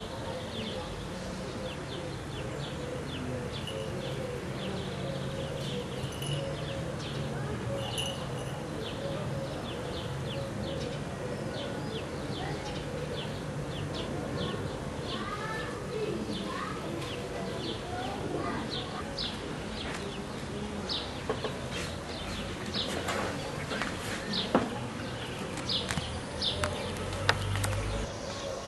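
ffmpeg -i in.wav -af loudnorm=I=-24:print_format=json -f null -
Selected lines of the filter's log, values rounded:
"input_i" : "-34.6",
"input_tp" : "-5.4",
"input_lra" : "3.7",
"input_thresh" : "-44.6",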